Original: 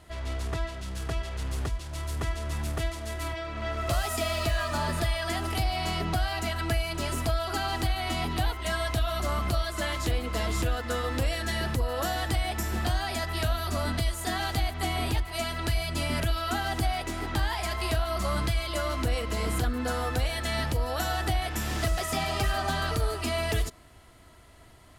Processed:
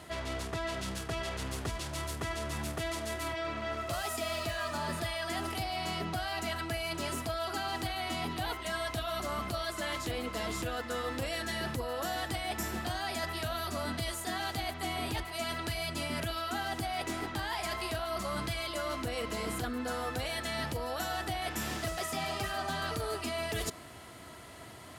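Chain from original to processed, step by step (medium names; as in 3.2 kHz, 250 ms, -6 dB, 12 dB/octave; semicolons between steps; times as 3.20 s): high-pass 120 Hz 12 dB/octave; reverse; compression 6:1, threshold -40 dBFS, peak gain reduction 14 dB; reverse; trim +7 dB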